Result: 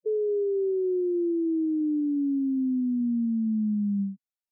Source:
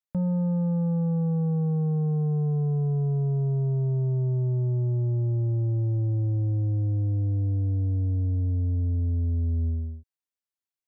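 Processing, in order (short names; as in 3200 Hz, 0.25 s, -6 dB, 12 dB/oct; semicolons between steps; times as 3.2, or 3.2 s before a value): wide varispeed 2.41×; spectral gate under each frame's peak -10 dB strong; gain -1 dB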